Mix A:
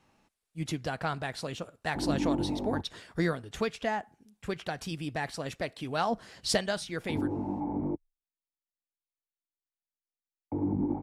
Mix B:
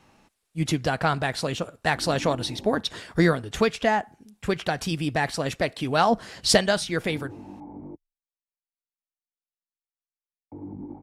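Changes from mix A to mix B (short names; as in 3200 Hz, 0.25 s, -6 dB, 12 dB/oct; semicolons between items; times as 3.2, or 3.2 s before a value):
speech +9.0 dB; background -8.5 dB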